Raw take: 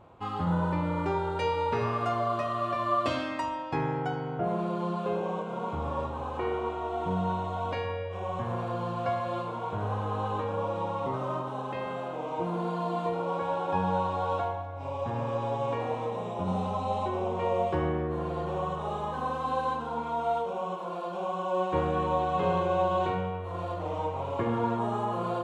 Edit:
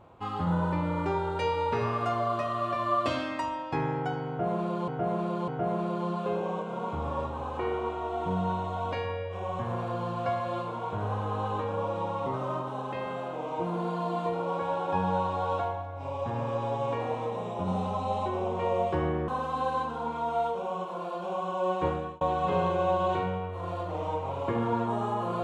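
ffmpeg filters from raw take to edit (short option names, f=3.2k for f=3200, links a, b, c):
-filter_complex "[0:a]asplit=5[a][b][c][d][e];[a]atrim=end=4.882[f];[b]atrim=start=4.278:end=4.882[g];[c]atrim=start=4.278:end=18.082[h];[d]atrim=start=19.188:end=22.12,asetpts=PTS-STARTPTS,afade=t=out:st=2.562:d=0.37[i];[e]atrim=start=22.12,asetpts=PTS-STARTPTS,afade=t=in:d=0.004:c=hsin[j];[f][g]acrossfade=d=0.004:c1=hsin:c2=hsin[k];[k][h]acrossfade=d=0.004:c1=hsin:c2=hsin[l];[i][j]concat=n=2:v=0:a=1[m];[l][m]acrossfade=d=0.004:c1=hsin:c2=hsin"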